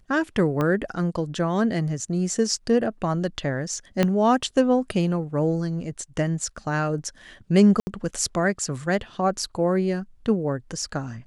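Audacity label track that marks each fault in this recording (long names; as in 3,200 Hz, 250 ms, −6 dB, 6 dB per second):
0.610000	0.610000	click −13 dBFS
4.030000	4.030000	click −8 dBFS
7.800000	7.870000	drop-out 70 ms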